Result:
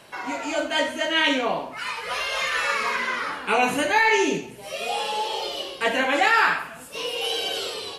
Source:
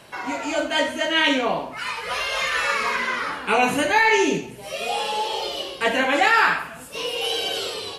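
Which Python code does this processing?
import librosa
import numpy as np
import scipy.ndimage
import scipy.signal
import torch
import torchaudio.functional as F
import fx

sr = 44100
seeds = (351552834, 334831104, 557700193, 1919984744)

y = fx.peak_eq(x, sr, hz=70.0, db=-4.5, octaves=2.6)
y = y * librosa.db_to_amplitude(-1.5)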